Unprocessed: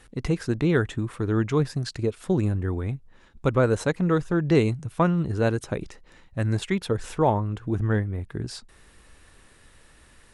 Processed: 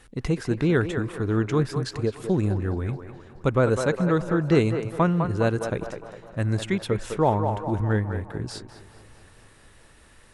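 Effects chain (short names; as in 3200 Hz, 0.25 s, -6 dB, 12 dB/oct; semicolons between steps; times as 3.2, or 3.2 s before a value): on a send: narrowing echo 0.204 s, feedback 55%, band-pass 850 Hz, level -5 dB; on the sum: warbling echo 0.214 s, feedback 73%, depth 159 cents, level -23.5 dB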